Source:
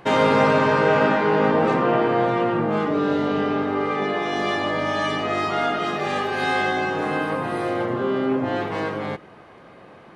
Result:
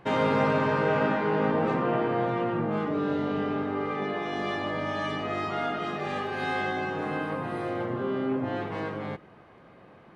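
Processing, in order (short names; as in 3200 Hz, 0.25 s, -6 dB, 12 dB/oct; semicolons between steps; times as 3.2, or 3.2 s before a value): tone controls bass +4 dB, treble -5 dB; gain -7.5 dB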